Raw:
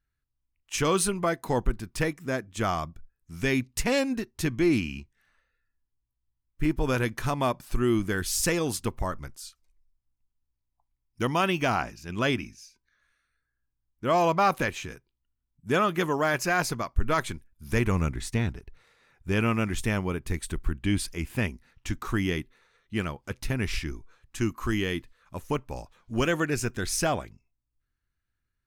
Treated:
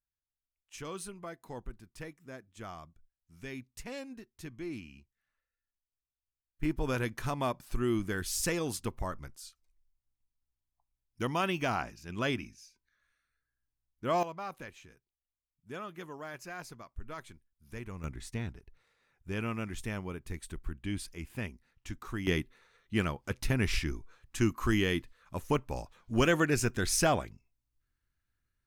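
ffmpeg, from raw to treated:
-af "asetnsamples=n=441:p=0,asendcmd='6.63 volume volume -6dB;14.23 volume volume -18dB;18.04 volume volume -10dB;22.27 volume volume -0.5dB',volume=0.141"

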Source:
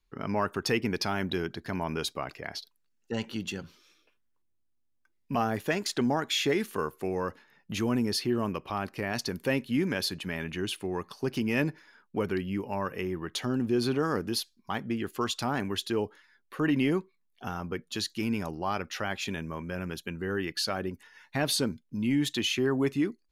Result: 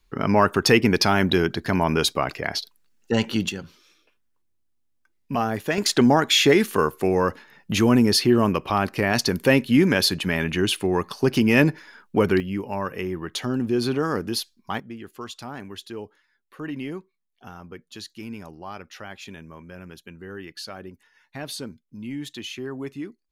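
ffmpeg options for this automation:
-af "asetnsamples=n=441:p=0,asendcmd='3.49 volume volume 4dB;5.78 volume volume 10.5dB;12.4 volume volume 4dB;14.8 volume volume -6dB',volume=3.55"

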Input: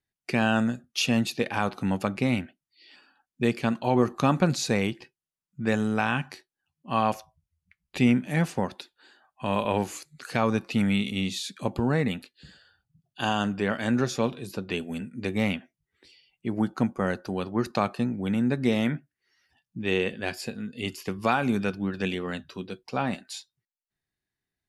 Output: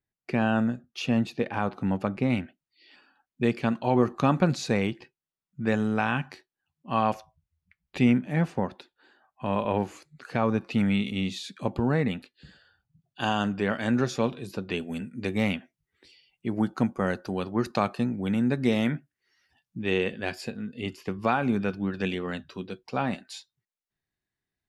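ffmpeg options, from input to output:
-af "asetnsamples=n=441:p=0,asendcmd='2.3 lowpass f 3300;8.18 lowpass f 1600;10.62 lowpass f 3200;13.21 lowpass f 5400;14.9 lowpass f 11000;19.8 lowpass f 4800;20.51 lowpass f 2200;21.7 lowpass f 4800',lowpass=f=1400:p=1"

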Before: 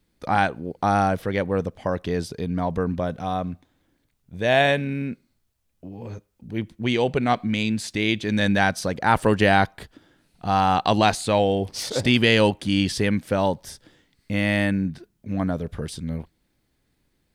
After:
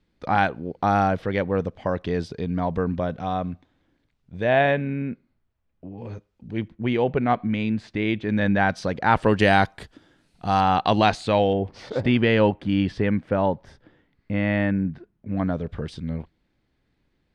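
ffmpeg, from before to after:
-af "asetnsamples=n=441:p=0,asendcmd='4.44 lowpass f 2100;5.98 lowpass f 4200;6.68 lowpass f 2000;8.69 lowpass f 4000;9.39 lowpass f 9000;10.61 lowpass f 4200;11.53 lowpass f 1900;15.37 lowpass f 3700',lowpass=4200"

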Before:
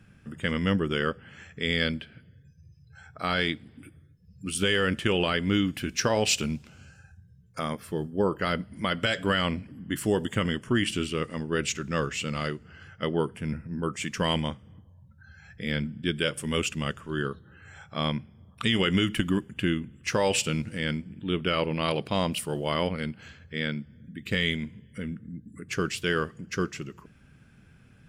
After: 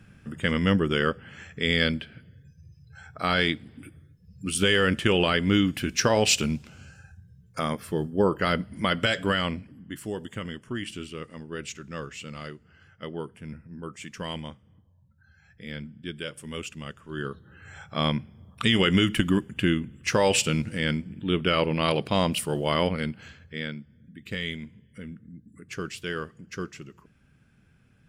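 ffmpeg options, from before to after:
-af "volume=5.01,afade=t=out:st=8.93:d=1.05:silence=0.281838,afade=t=in:st=16.98:d=0.76:silence=0.281838,afade=t=out:st=22.97:d=0.82:silence=0.375837"

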